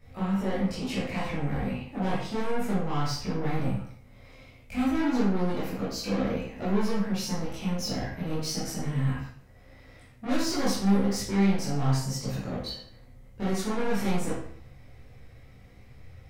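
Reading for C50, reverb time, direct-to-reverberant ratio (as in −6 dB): 0.5 dB, 0.60 s, −10.0 dB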